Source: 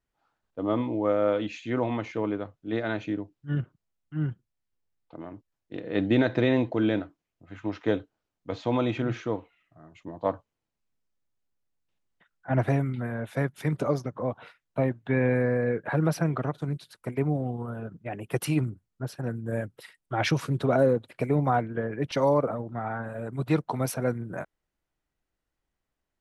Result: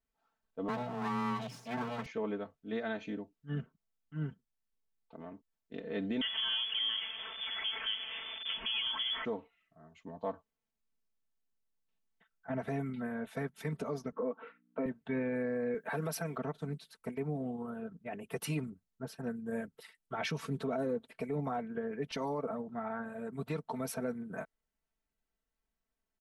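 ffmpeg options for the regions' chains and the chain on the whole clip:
-filter_complex "[0:a]asettb=1/sr,asplit=3[a][b][c];[a]atrim=end=0.684[d];[b]atrim=start=0.68:end=2.06,asetpts=PTS-STARTPTS,afade=t=in:d=0.004:c=qsin,afade=t=out:st=1.376:d=0.004:c=qsin,aeval=exprs='abs(val(0))':c=same,afreqshift=120[e];[c]atrim=start=2.056[f];[d][e]acrossfade=d=0.004:c1=hsin:c2=qsin[g];[g][f]acrossfade=d=0.004:c1=qsin:c2=hsin,asettb=1/sr,asplit=3[h][i][j];[h]atrim=end=6.214[k];[i]atrim=start=6.21:end=9.25,asetpts=PTS-STARTPTS,afade=t=in:d=0.004:c=qsin,afade=t=out:st=3.036:d=0.004:c=qsin,aeval=exprs='val(0)+0.5*0.0376*sgn(val(0))':c=same,lowpass=f=3k:t=q:w=0.5098,lowpass=f=3k:t=q:w=0.6013,lowpass=f=3k:t=q:w=0.9,lowpass=f=3k:t=q:w=2.563,afreqshift=-3500[l];[j]atrim=start=9.246[m];[k][l]acrossfade=d=0.004:c1=hsin:c2=qsin[n];[n][m]acrossfade=d=0.004:c1=qsin:c2=hsin,asettb=1/sr,asplit=3[o][p][q];[o]atrim=end=14.124[r];[p]atrim=start=14.12:end=14.86,asetpts=PTS-STARTPTS,afade=t=in:d=0.004:c=qsin,afade=t=out:st=0.736:d=0.004:c=qsin,aeval=exprs='val(0)+0.001*(sin(2*PI*60*n/s)+sin(2*PI*2*60*n/s)/2+sin(2*PI*3*60*n/s)/3+sin(2*PI*4*60*n/s)/4+sin(2*PI*5*60*n/s)/5)':c=same,highpass=f=190:w=0.5412,highpass=f=190:w=1.3066,equalizer=f=290:t=q:w=4:g=7,equalizer=f=470:t=q:w=4:g=10,equalizer=f=700:t=q:w=4:g=-5,equalizer=f=1.3k:t=q:w=4:g=7,lowpass=f=2.7k:w=0.5412,lowpass=f=2.7k:w=1.3066[s];[q]atrim=start=14.856[t];[r][s]acrossfade=d=0.004:c1=hsin:c2=qsin[u];[u][t]acrossfade=d=0.004:c1=qsin:c2=hsin,asettb=1/sr,asplit=3[v][w][x];[v]atrim=end=15.744[y];[w]atrim=start=15.74:end=16.37,asetpts=PTS-STARTPTS,afade=t=in:d=0.004:c=qsin,afade=t=out:st=0.626:d=0.004:c=qsin,highpass=f=230:p=1,aemphasis=mode=production:type=50kf[z];[x]atrim=start=16.366[aa];[y][z]acrossfade=d=0.004:c1=hsin:c2=qsin[ab];[ab][aa]acrossfade=d=0.004:c1=qsin:c2=hsin,aecho=1:1:4.5:0.82,alimiter=limit=-18.5dB:level=0:latency=1:release=125,volume=-8dB"

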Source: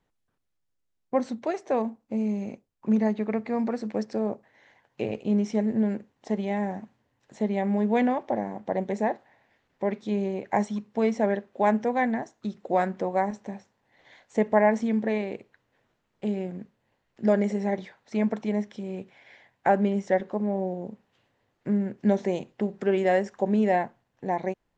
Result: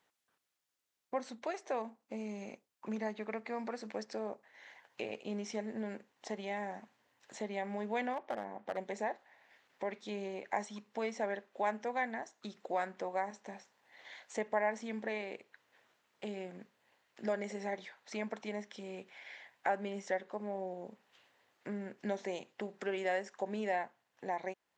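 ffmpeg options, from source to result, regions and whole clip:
-filter_complex "[0:a]asettb=1/sr,asplit=3[a][b][c];[a]atrim=end=8.134[d];[b]atrim=start=8.13:end=8.77,asetpts=PTS-STARTPTS,afade=t=in:d=0.004:c=qsin,afade=t=out:st=0.636:d=0.004:c=qsin,lowpass=f=1.6k:p=1,aeval=exprs='clip(val(0),-1,0.0708)':c=same[e];[c]atrim=start=8.766[f];[d][e]acrossfade=d=0.004:c1=hsin:c2=qsin[g];[g][f]acrossfade=d=0.004:c1=qsin:c2=hsin,highpass=f=1.1k:p=1,acompressor=threshold=-56dB:ratio=1.5,volume=5.5dB"

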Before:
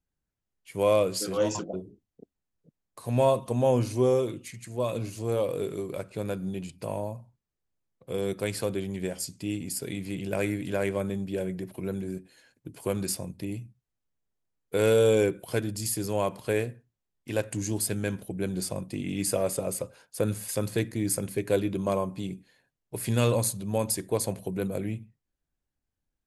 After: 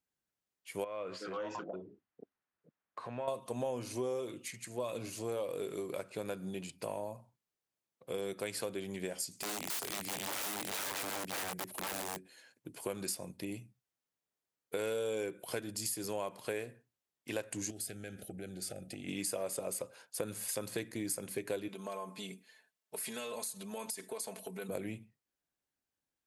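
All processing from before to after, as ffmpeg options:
-filter_complex "[0:a]asettb=1/sr,asplit=3[a][b][c];[a]atrim=end=0.844[d];[b]atrim=start=0.84:end=3.28,asetpts=PTS-STARTPTS,afade=t=in:d=0.004:c=qsin,afade=t=out:st=2.436:d=0.004:c=qsin,equalizer=f=1.4k:w=0.96:g=7.5,acompressor=threshold=-35dB:ratio=3:attack=3.2:release=140:knee=1:detection=peak,lowpass=2.9k[e];[c]atrim=start=3.276[f];[d][e]acrossfade=d=0.004:c1=hsin:c2=qsin[g];[g][f]acrossfade=d=0.004:c1=qsin:c2=hsin,asettb=1/sr,asplit=3[h][i][j];[h]atrim=end=9.314[k];[i]atrim=start=9.31:end=12.17,asetpts=PTS-STARTPTS,afade=t=in:d=0.004:c=qsin,afade=t=out:st=2.856:d=0.004:c=qsin,highshelf=f=6.3k:g=11.5,aeval=exprs='(mod(28.2*val(0)+1,2)-1)/28.2':c=same[l];[j]atrim=start=12.166[m];[k][l]acrossfade=d=0.004:c1=hsin:c2=qsin[n];[n][m]acrossfade=d=0.004:c1=qsin:c2=hsin,asettb=1/sr,asplit=3[o][p][q];[o]atrim=end=17.704[r];[p]atrim=start=17.7:end=19.08,asetpts=PTS-STARTPTS,afade=t=in:d=0.004:c=qsin,afade=t=out:st=1.376:d=0.004:c=qsin,equalizer=f=77:w=1.4:g=10,acompressor=threshold=-33dB:ratio=16:attack=3.2:release=140:knee=1:detection=peak,asuperstop=centerf=1000:order=20:qfactor=2.4[s];[q]atrim=start=19.076[t];[r][s]acrossfade=d=0.004:c1=hsin:c2=qsin[u];[u][t]acrossfade=d=0.004:c1=qsin:c2=hsin,asettb=1/sr,asplit=3[v][w][x];[v]atrim=end=21.684[y];[w]atrim=start=21.68:end=24.69,asetpts=PTS-STARTPTS,afade=t=in:d=0.004:c=qsin,afade=t=out:st=3.006:d=0.004:c=qsin,lowshelf=f=410:g=-10,aecho=1:1:4.6:0.86,atrim=end_sample=132741,acompressor=threshold=-34dB:ratio=10:attack=3.2:release=140:knee=1:detection=peak[z];[x]atrim=start=24.686[aa];[y][z]acrossfade=d=0.004:c1=hsin:c2=qsin[ab];[ab][aa]acrossfade=d=0.004:c1=qsin:c2=hsin,highpass=f=430:p=1,acompressor=threshold=-35dB:ratio=4"

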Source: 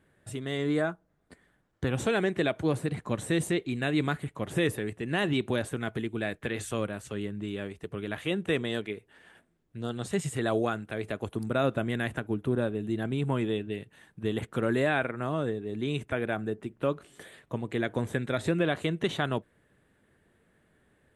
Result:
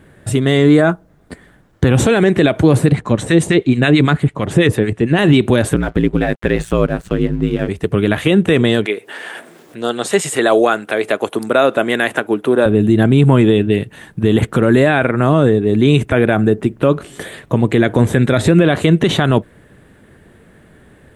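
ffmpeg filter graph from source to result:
-filter_complex "[0:a]asettb=1/sr,asplit=3[a][b][c];[a]atrim=end=2.924[d];[b]atrim=start=2.92:end=5.19,asetpts=PTS-STARTPTS,afade=t=in:d=0.004:c=qsin,afade=t=out:st=2.266:d=0.004:c=qsin,lowpass=8.2k,acrossover=split=960[e][f];[e]aeval=exprs='val(0)*(1-0.7/2+0.7/2*cos(2*PI*9*n/s))':c=same[g];[f]aeval=exprs='val(0)*(1-0.7/2-0.7/2*cos(2*PI*9*n/s))':c=same[h];[g][h]amix=inputs=2:normalize=0[i];[c]atrim=start=5.186[j];[d][i]acrossfade=d=0.004:c1=hsin:c2=qsin[k];[k][j]acrossfade=d=0.004:c1=qsin:c2=hsin,asettb=1/sr,asplit=3[l][m][n];[l]atrim=end=5.744[o];[m]atrim=start=5.74:end=7.69,asetpts=PTS-STARTPTS,afade=t=in:d=0.004:c=qsin,afade=t=out:st=1.946:d=0.004:c=qsin,highshelf=f=3.6k:g=-10.5,aeval=exprs='sgn(val(0))*max(abs(val(0))-0.00126,0)':c=same,aeval=exprs='val(0)*sin(2*PI*56*n/s)':c=same[p];[n]atrim=start=7.686[q];[o][p]acrossfade=d=0.004:c1=hsin:c2=qsin[r];[r][q]acrossfade=d=0.004:c1=qsin:c2=hsin,asettb=1/sr,asplit=3[s][t][u];[s]atrim=end=8.864[v];[t]atrim=start=8.86:end=12.66,asetpts=PTS-STARTPTS,afade=t=in:d=0.004:c=qsin,afade=t=out:st=3.796:d=0.004:c=qsin,acompressor=mode=upward:threshold=-37dB:ratio=2.5:attack=3.2:release=140:knee=2.83:detection=peak,highpass=430[w];[u]atrim=start=12.656[x];[v][w]acrossfade=d=0.004:c1=hsin:c2=qsin[y];[y][x]acrossfade=d=0.004:c1=qsin:c2=hsin,lowshelf=f=480:g=4.5,alimiter=level_in=19dB:limit=-1dB:release=50:level=0:latency=1,volume=-1dB"

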